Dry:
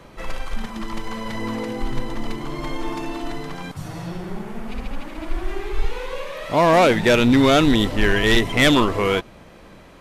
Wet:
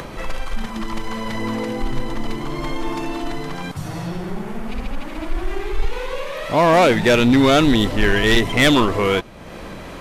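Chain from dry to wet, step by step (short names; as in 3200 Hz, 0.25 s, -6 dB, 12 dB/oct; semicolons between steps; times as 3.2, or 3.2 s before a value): in parallel at -6 dB: soft clip -23 dBFS, distortion -6 dB; on the sum: upward compressor, threshold -24 dBFS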